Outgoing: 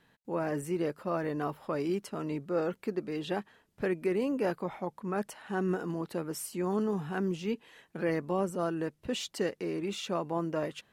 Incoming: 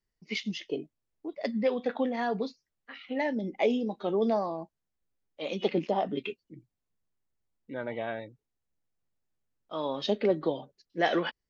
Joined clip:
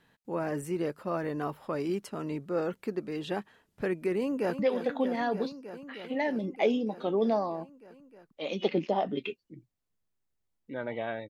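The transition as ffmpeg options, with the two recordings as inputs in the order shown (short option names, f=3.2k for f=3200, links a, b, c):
-filter_complex "[0:a]apad=whole_dur=11.29,atrim=end=11.29,atrim=end=4.592[a];[1:a]atrim=start=1.588:end=8.29[b];[a][b]acrossfade=d=0.004:c1=hsin:c2=hsin,asplit=2[c][d];[d]afade=t=in:st=4.18:d=0.01,afade=t=out:st=4.59:d=0.01,aecho=0:1:310|620|930|1240|1550|1860|2170|2480|2790|3100|3410|3720:0.334965|0.284721|0.242013|0.205711|0.174854|0.148626|0.126332|0.107382|0.0912749|0.0775837|0.0659461|0.0560542[e];[c][e]amix=inputs=2:normalize=0"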